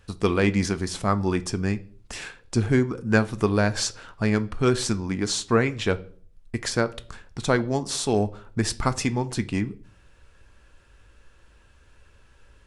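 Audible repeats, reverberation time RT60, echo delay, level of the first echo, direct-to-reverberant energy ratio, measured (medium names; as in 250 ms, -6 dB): no echo, 0.50 s, no echo, no echo, 11.5 dB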